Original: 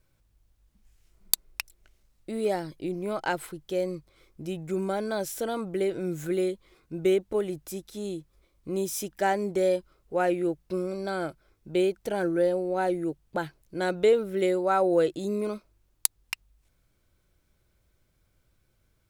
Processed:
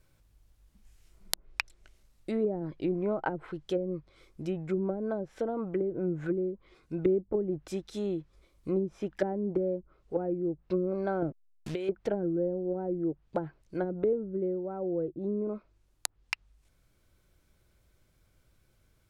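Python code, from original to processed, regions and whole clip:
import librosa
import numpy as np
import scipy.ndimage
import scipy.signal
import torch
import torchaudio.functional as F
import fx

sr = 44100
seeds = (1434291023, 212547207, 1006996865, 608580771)

y = fx.chain(x, sr, fx.delta_hold(step_db=-46.0),
    fx.high_shelf(hz=4500.0, db=11.0),
    fx.over_compress(threshold_db=-28.0, ratio=-0.5), at=(11.22, 11.89))
y = fx.env_lowpass_down(y, sr, base_hz=310.0, full_db=-24.0)
y = fx.dynamic_eq(y, sr, hz=1400.0, q=0.93, threshold_db=-52.0, ratio=4.0, max_db=3)
y = fx.rider(y, sr, range_db=10, speed_s=2.0)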